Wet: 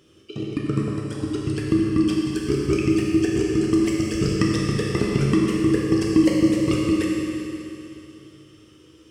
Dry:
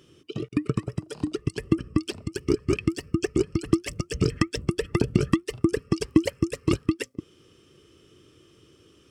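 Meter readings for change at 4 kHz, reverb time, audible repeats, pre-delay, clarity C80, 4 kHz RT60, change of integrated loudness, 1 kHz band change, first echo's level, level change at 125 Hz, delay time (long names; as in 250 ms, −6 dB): +4.0 dB, 2.9 s, no echo audible, 10 ms, −0.5 dB, 2.9 s, +5.5 dB, +3.5 dB, no echo audible, +4.0 dB, no echo audible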